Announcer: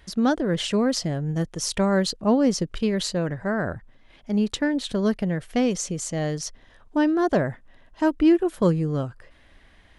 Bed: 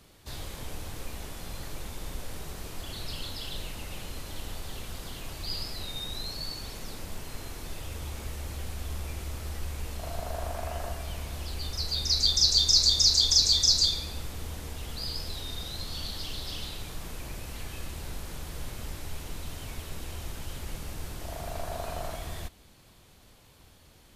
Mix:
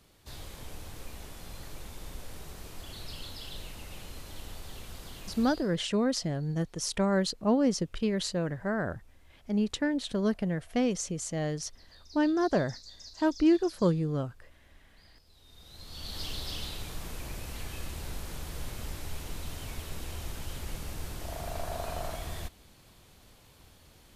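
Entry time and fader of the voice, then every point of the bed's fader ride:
5.20 s, -5.5 dB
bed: 5.41 s -5 dB
5.87 s -27.5 dB
15.21 s -27.5 dB
16.21 s -0.5 dB

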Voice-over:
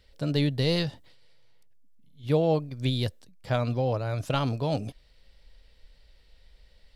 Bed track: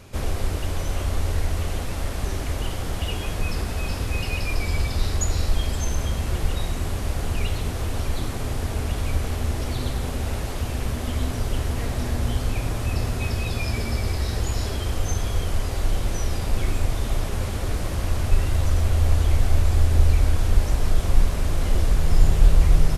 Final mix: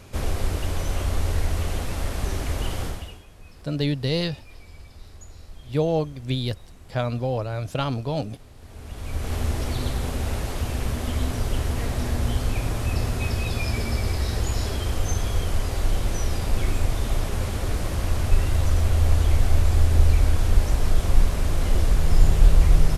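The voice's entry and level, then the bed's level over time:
3.45 s, +1.0 dB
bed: 2.85 s 0 dB
3.26 s -21 dB
8.54 s -21 dB
9.35 s 0 dB

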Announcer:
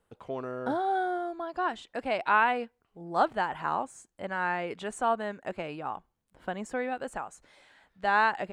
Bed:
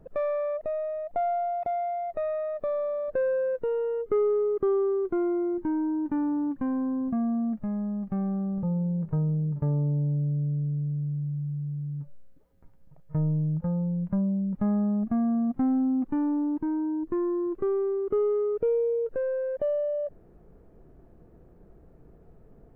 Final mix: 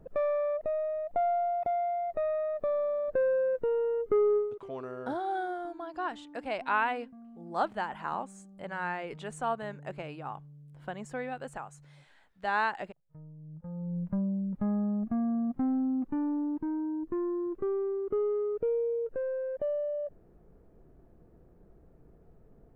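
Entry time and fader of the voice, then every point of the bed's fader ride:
4.40 s, -4.5 dB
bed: 4.37 s -1 dB
4.68 s -23.5 dB
13.36 s -23.5 dB
13.97 s -4.5 dB

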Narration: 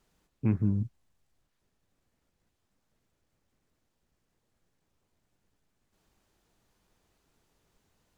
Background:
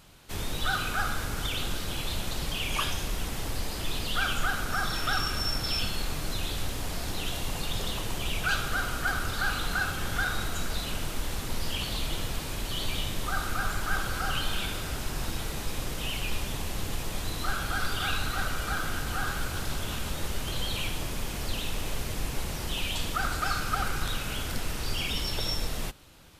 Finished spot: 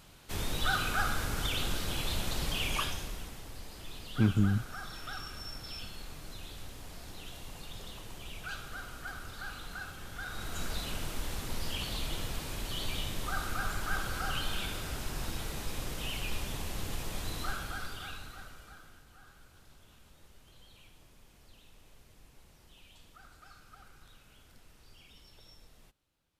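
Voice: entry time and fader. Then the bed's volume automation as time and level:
3.75 s, +0.5 dB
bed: 2.66 s -1.5 dB
3.43 s -13.5 dB
10.18 s -13.5 dB
10.63 s -4.5 dB
17.39 s -4.5 dB
19.07 s -26.5 dB

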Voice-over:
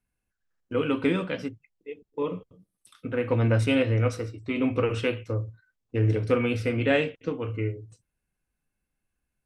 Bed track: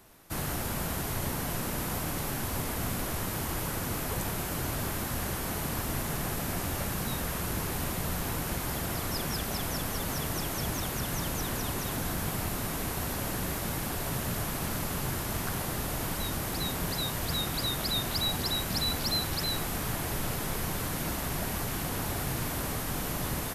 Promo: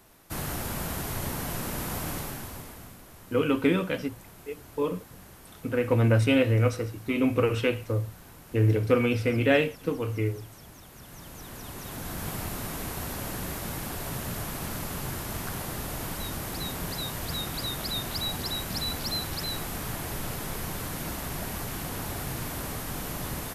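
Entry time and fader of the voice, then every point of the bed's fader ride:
2.60 s, +1.0 dB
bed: 2.14 s 0 dB
3.01 s -16.5 dB
10.86 s -16.5 dB
12.29 s -1.5 dB

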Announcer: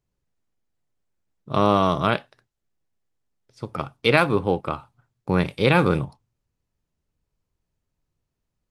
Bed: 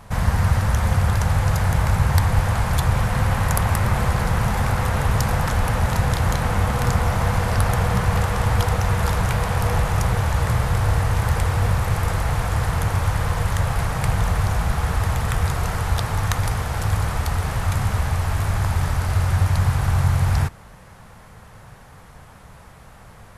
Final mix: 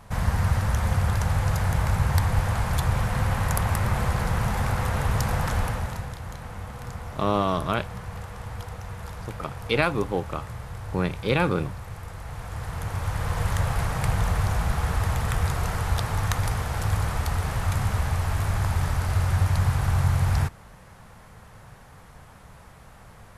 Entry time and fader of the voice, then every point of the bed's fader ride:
5.65 s, -5.0 dB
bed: 5.6 s -4.5 dB
6.17 s -16.5 dB
12.14 s -16.5 dB
13.46 s -3.5 dB

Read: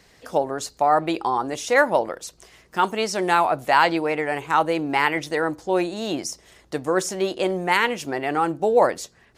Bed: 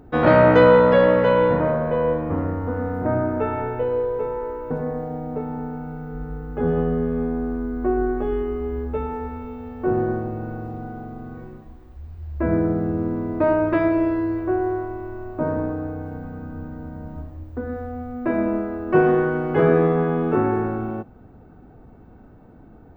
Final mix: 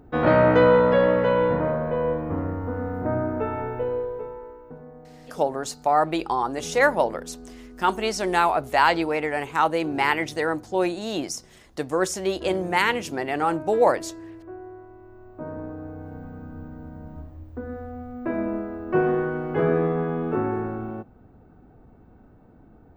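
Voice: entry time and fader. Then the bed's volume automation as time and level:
5.05 s, -1.5 dB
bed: 3.89 s -3.5 dB
4.86 s -17.5 dB
14.74 s -17.5 dB
16.21 s -5 dB

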